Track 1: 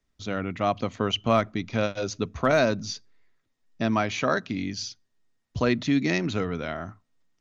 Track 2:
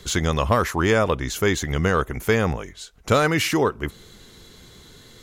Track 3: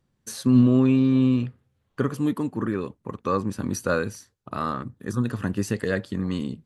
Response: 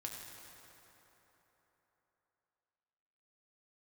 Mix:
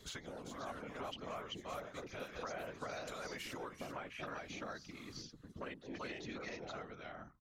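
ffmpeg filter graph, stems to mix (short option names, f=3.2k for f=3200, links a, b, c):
-filter_complex "[0:a]volume=-2.5dB,asplit=3[a][b][c];[b]volume=-7dB[d];[1:a]acompressor=threshold=-22dB:ratio=6,volume=-7.5dB,asplit=2[e][f];[f]volume=-15dB[g];[2:a]acompressor=threshold=-32dB:ratio=1.5,volume=-9.5dB,asplit=2[h][i];[i]volume=-17.5dB[j];[c]apad=whole_len=230358[k];[e][k]sidechaincompress=threshold=-45dB:ratio=8:attack=21:release=141[l];[a][h]amix=inputs=2:normalize=0,afwtdn=0.0224,acompressor=threshold=-31dB:ratio=2.5,volume=0dB[m];[d][g][j]amix=inputs=3:normalize=0,aecho=0:1:387:1[n];[l][m][n]amix=inputs=3:normalize=0,acrossover=split=410|940|4500[o][p][q][r];[o]acompressor=threshold=-49dB:ratio=4[s];[p]acompressor=threshold=-42dB:ratio=4[t];[q]acompressor=threshold=-41dB:ratio=4[u];[r]acompressor=threshold=-49dB:ratio=4[v];[s][t][u][v]amix=inputs=4:normalize=0,afftfilt=real='hypot(re,im)*cos(2*PI*random(0))':imag='hypot(re,im)*sin(2*PI*random(1))':win_size=512:overlap=0.75"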